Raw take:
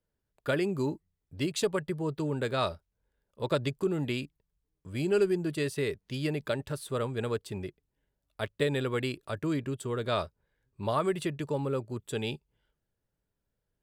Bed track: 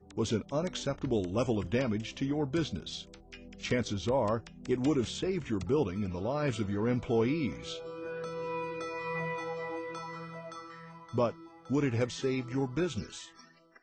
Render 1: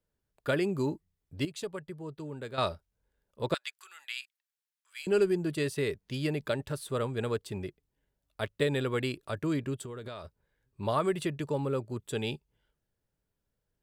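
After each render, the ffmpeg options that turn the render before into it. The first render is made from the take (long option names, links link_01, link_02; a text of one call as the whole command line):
ffmpeg -i in.wav -filter_complex "[0:a]asettb=1/sr,asplit=3[link_01][link_02][link_03];[link_01]atrim=end=3.544[link_04];[link_02]atrim=start=3.54:end=5.07,asetpts=PTS-STARTPTS,afade=type=in:duration=0.004:curve=qsin,afade=type=out:start_time=1.526:duration=0.004:curve=qsin,highpass=frequency=1400:width=0.5412,highpass=frequency=1400:width=1.3066[link_05];[link_03]atrim=start=5.066[link_06];[link_04][link_05]acrossfade=duration=0.004:curve1=hsin:curve2=qsin[link_07];[link_07][link_06]acrossfade=duration=0.004:curve1=qsin:curve2=hsin,asplit=3[link_08][link_09][link_10];[link_08]afade=type=out:start_time=9.83:duration=0.02[link_11];[link_09]acompressor=threshold=-37dB:ratio=16:attack=3.2:release=140:knee=1:detection=peak,afade=type=in:start_time=9.83:duration=0.02,afade=type=out:start_time=10.24:duration=0.02[link_12];[link_10]afade=type=in:start_time=10.24:duration=0.02[link_13];[link_11][link_12][link_13]amix=inputs=3:normalize=0,asplit=3[link_14][link_15][link_16];[link_14]atrim=end=1.452[link_17];[link_15]atrim=start=1.448:end=2.582,asetpts=PTS-STARTPTS,volume=-9dB[link_18];[link_16]atrim=start=2.578[link_19];[link_17][link_18]acrossfade=duration=0.004:curve1=hsin:curve2=hsin[link_20];[link_20][link_19]acrossfade=duration=0.004:curve1=hsin:curve2=hsin" out.wav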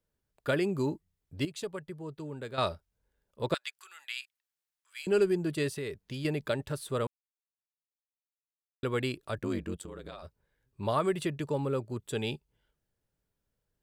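ffmpeg -i in.wav -filter_complex "[0:a]asettb=1/sr,asplit=3[link_01][link_02][link_03];[link_01]atrim=end=5.764[link_04];[link_02]atrim=start=5.76:end=6.25,asetpts=PTS-STARTPTS,afade=type=in:duration=0.004:curve=qsin,afade=type=out:start_time=0.486:duration=0.004:curve=qsin,acompressor=threshold=-35dB:ratio=2.5:attack=3.2:release=140:knee=1:detection=peak[link_05];[link_03]atrim=start=6.246[link_06];[link_04][link_05]acrossfade=duration=0.004:curve1=hsin:curve2=qsin[link_07];[link_07][link_06]acrossfade=duration=0.004:curve1=qsin:curve2=hsin,asettb=1/sr,asplit=3[link_08][link_09][link_10];[link_08]atrim=end=9.374[link_11];[link_09]atrim=start=9.37:end=10.23,asetpts=PTS-STARTPTS,afade=type=in:duration=0.004:curve=qsin,afade=type=out:start_time=0.856:duration=0.004:curve=qsin,aeval=exprs='val(0)*sin(2*PI*47*n/s)':channel_layout=same[link_12];[link_10]atrim=start=10.226[link_13];[link_11][link_12]acrossfade=duration=0.004:curve1=hsin:curve2=qsin[link_14];[link_14][link_13]acrossfade=duration=0.004:curve1=qsin:curve2=hsin,asplit=3[link_15][link_16][link_17];[link_15]atrim=end=7.07,asetpts=PTS-STARTPTS,afade=type=out:start_time=7.066:duration=0.004:curve=hsin[link_18];[link_16]atrim=start=7.07:end=8.83,asetpts=PTS-STARTPTS,volume=0[link_19];[link_17]atrim=start=8.83,asetpts=PTS-STARTPTS,afade=type=in:duration=0.004:curve=hsin[link_20];[link_18][link_19][link_20]concat=n=3:v=0:a=1" out.wav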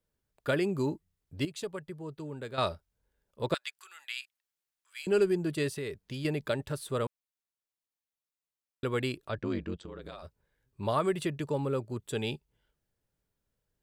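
ffmpeg -i in.wav -filter_complex "[0:a]asplit=3[link_01][link_02][link_03];[link_01]afade=type=out:start_time=9.27:duration=0.02[link_04];[link_02]lowpass=frequency=5400:width=0.5412,lowpass=frequency=5400:width=1.3066,afade=type=in:start_time=9.27:duration=0.02,afade=type=out:start_time=10.01:duration=0.02[link_05];[link_03]afade=type=in:start_time=10.01:duration=0.02[link_06];[link_04][link_05][link_06]amix=inputs=3:normalize=0" out.wav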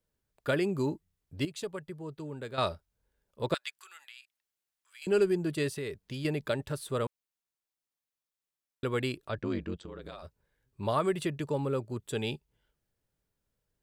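ffmpeg -i in.wav -filter_complex "[0:a]asettb=1/sr,asplit=3[link_01][link_02][link_03];[link_01]atrim=end=3.974[link_04];[link_02]atrim=start=3.97:end=5.02,asetpts=PTS-STARTPTS,afade=type=in:duration=0.004:curve=qsin,afade=type=out:start_time=1.046:duration=0.004:curve=qsin,acompressor=threshold=-52dB:ratio=2.5:attack=3.2:release=140:knee=1:detection=peak[link_05];[link_03]atrim=start=5.016[link_06];[link_04][link_05]acrossfade=duration=0.004:curve1=hsin:curve2=qsin[link_07];[link_07][link_06]acrossfade=duration=0.004:curve1=qsin:curve2=hsin" out.wav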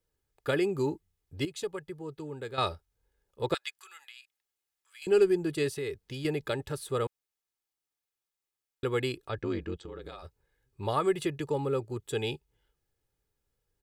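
ffmpeg -i in.wav -af "aecho=1:1:2.4:0.45" out.wav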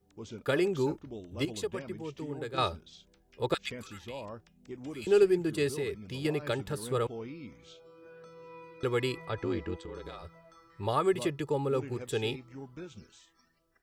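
ffmpeg -i in.wav -i bed.wav -filter_complex "[1:a]volume=-13dB[link_01];[0:a][link_01]amix=inputs=2:normalize=0" out.wav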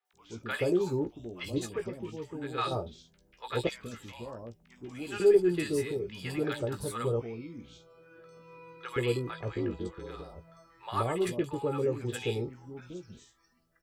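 ffmpeg -i in.wav -filter_complex "[0:a]asplit=2[link_01][link_02];[link_02]adelay=17,volume=-7.5dB[link_03];[link_01][link_03]amix=inputs=2:normalize=0,acrossover=split=850|3700[link_04][link_05][link_06];[link_06]adelay=50[link_07];[link_04]adelay=130[link_08];[link_08][link_05][link_07]amix=inputs=3:normalize=0" out.wav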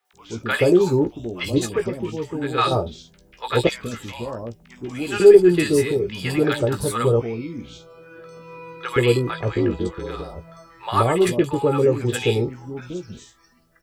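ffmpeg -i in.wav -af "volume=12dB,alimiter=limit=-1dB:level=0:latency=1" out.wav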